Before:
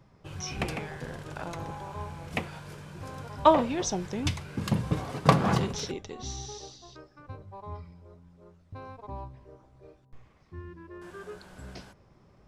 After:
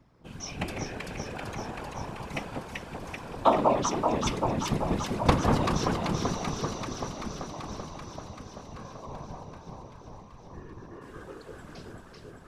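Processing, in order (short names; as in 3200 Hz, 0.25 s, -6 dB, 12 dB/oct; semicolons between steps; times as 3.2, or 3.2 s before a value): echo with dull and thin repeats by turns 0.193 s, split 1100 Hz, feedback 86%, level -2 dB; whisperiser; gain -2.5 dB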